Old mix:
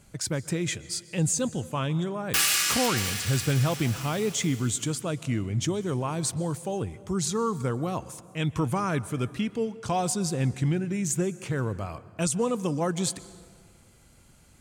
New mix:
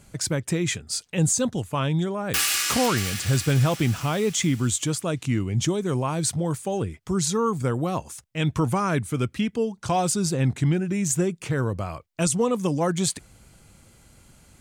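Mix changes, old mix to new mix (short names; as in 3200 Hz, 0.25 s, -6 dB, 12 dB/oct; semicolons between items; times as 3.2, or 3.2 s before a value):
speech +4.5 dB; reverb: off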